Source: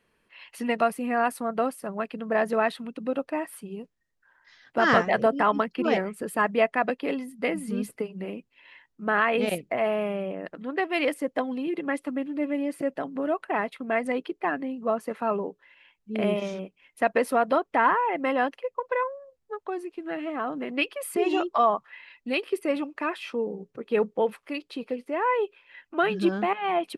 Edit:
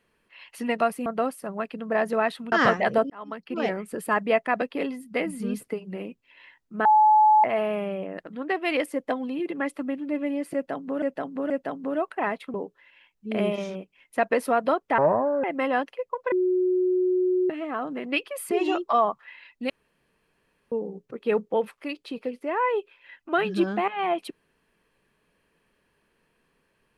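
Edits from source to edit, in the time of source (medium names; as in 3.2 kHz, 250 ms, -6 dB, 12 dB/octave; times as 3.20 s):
1.06–1.46 s: delete
2.92–4.80 s: delete
5.38–6.13 s: fade in
9.13–9.72 s: bleep 857 Hz -13.5 dBFS
12.82–13.30 s: loop, 3 plays
13.86–15.38 s: delete
17.82–18.09 s: speed 59%
18.97–20.15 s: bleep 366 Hz -19.5 dBFS
22.35–23.37 s: room tone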